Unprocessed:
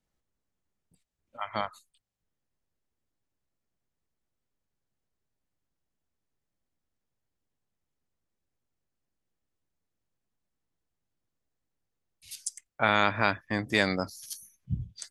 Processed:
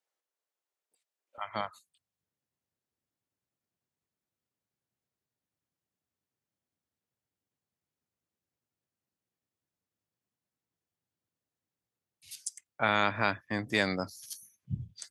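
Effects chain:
high-pass filter 430 Hz 24 dB per octave, from 0:01.38 81 Hz
level −3 dB

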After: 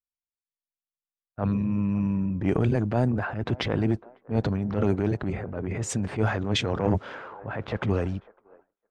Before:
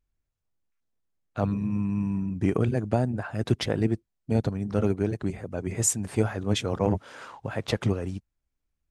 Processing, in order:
transient designer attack −8 dB, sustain +6 dB
low-pass that shuts in the quiet parts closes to 1,300 Hz, open at −16.5 dBFS
on a send: delay with a band-pass on its return 553 ms, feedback 59%, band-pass 780 Hz, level −18 dB
on the sum: downward expander −42 dBFS
level +2 dB

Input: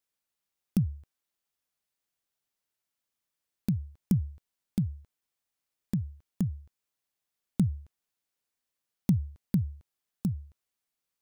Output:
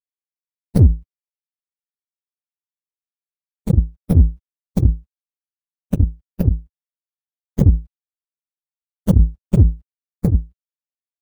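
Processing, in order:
partials spread apart or drawn together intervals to 121%
low shelf with overshoot 110 Hz +7.5 dB, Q 1.5
power curve on the samples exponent 2
boost into a limiter +25.5 dB
level −1 dB

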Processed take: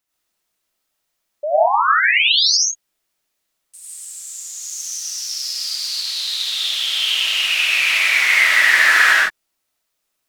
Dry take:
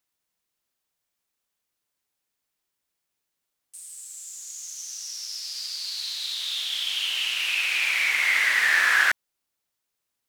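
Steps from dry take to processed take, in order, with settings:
0:01.43–0:02.57: sound drawn into the spectrogram rise 570–6,700 Hz −23 dBFS
0:04.62–0:05.88: high-shelf EQ 8,300 Hz +4.5 dB
convolution reverb, pre-delay 50 ms, DRR −5.5 dB
level +1.5 dB

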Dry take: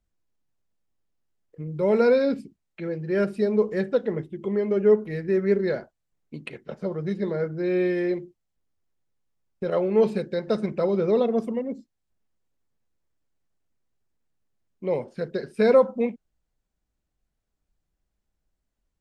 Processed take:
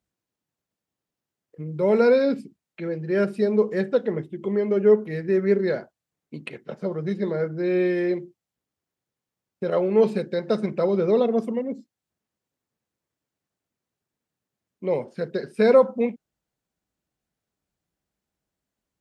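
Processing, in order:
high-pass filter 110 Hz
level +1.5 dB

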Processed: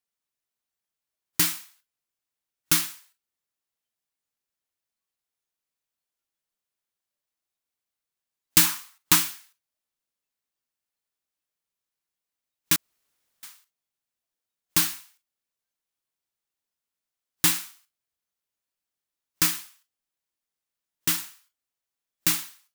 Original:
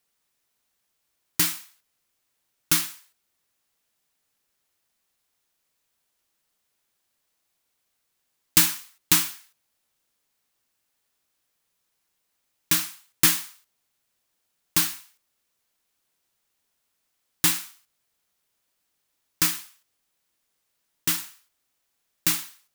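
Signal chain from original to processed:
noise reduction from a noise print of the clip's start 13 dB
0:08.64–0:09.16: parametric band 1,100 Hz +6.5 dB 0.89 octaves
0:12.76–0:13.43: fill with room tone

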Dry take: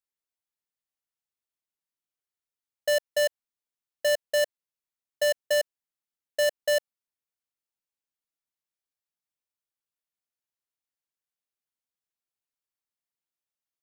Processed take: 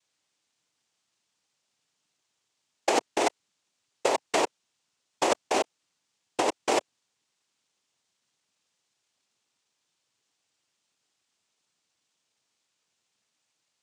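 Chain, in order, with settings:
cochlear-implant simulation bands 4
compressor whose output falls as the input rises −32 dBFS, ratio −1
level +8.5 dB

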